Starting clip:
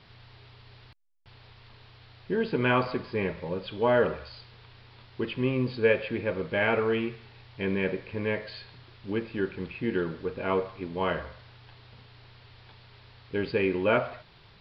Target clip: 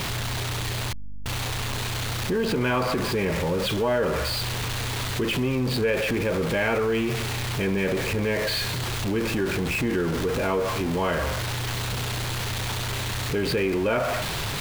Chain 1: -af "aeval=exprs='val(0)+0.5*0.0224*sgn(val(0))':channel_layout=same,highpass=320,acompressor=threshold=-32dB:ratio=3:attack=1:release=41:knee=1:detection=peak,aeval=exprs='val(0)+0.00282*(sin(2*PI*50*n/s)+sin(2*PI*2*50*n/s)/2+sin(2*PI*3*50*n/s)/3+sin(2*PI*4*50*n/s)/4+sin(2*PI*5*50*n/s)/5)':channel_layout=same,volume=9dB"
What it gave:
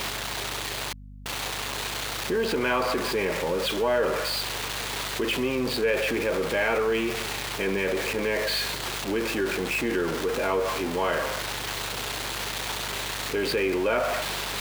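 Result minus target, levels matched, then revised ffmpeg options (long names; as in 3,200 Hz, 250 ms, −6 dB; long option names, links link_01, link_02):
250 Hz band −2.5 dB
-af "aeval=exprs='val(0)+0.5*0.0224*sgn(val(0))':channel_layout=same,acompressor=threshold=-32dB:ratio=3:attack=1:release=41:knee=1:detection=peak,aeval=exprs='val(0)+0.00282*(sin(2*PI*50*n/s)+sin(2*PI*2*50*n/s)/2+sin(2*PI*3*50*n/s)/3+sin(2*PI*4*50*n/s)/4+sin(2*PI*5*50*n/s)/5)':channel_layout=same,volume=9dB"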